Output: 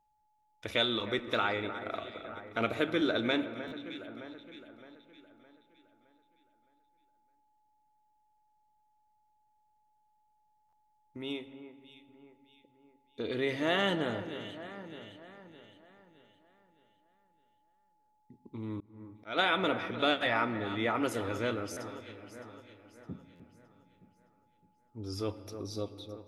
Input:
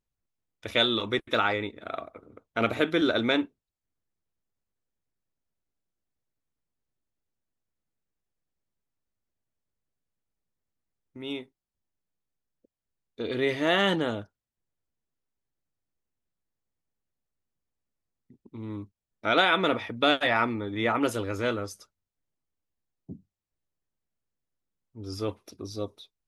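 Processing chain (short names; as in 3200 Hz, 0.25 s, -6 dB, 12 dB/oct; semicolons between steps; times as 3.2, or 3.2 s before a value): echo with dull and thin repeats by turns 0.307 s, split 2000 Hz, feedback 64%, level -13 dB; in parallel at +1.5 dB: compressor, threshold -38 dBFS, peak gain reduction 19 dB; on the sum: whine 850 Hz -65 dBFS; on a send at -13 dB: reverb RT60 2.7 s, pre-delay 6 ms; 18.8–19.39 on the sum: auto swell 0.234 s; stuck buffer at 3.67/10.68/21.72/23.35, samples 512, times 3; gain -7 dB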